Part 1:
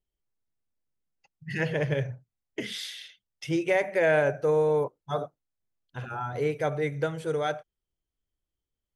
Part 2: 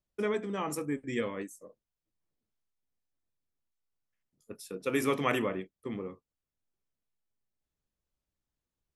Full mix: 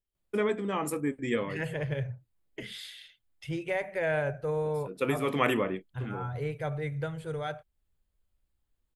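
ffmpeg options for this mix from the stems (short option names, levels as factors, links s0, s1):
-filter_complex "[0:a]asubboost=boost=8.5:cutoff=92,volume=0.531,asplit=2[s0][s1];[1:a]adelay=150,volume=1.41[s2];[s1]apad=whole_len=401497[s3];[s2][s3]sidechaincompress=threshold=0.00891:ratio=8:attack=46:release=159[s4];[s0][s4]amix=inputs=2:normalize=0,equalizer=f=5800:t=o:w=0.29:g=-11"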